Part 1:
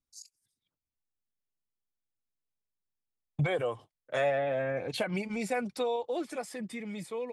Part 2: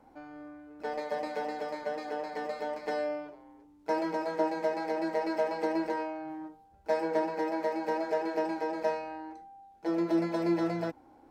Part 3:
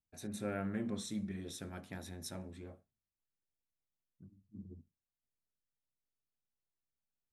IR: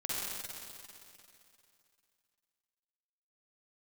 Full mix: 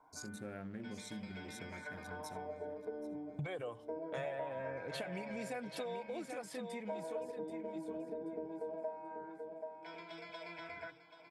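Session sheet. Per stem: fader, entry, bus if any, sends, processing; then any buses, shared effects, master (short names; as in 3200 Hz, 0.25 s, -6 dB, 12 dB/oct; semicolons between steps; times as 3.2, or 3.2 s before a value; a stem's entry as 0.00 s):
0.0 dB, 0.00 s, no send, echo send -8.5 dB, dry
-0.5 dB, 0.00 s, no send, echo send -12.5 dB, octaver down 1 oct, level +4 dB; ripple EQ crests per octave 1.7, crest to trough 13 dB; LFO band-pass sine 0.22 Hz 310–3000 Hz
-2.5 dB, 0.00 s, no send, echo send -14.5 dB, Wiener smoothing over 25 samples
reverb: off
echo: feedback echo 0.782 s, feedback 23%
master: compressor 3:1, threshold -43 dBFS, peak gain reduction 15.5 dB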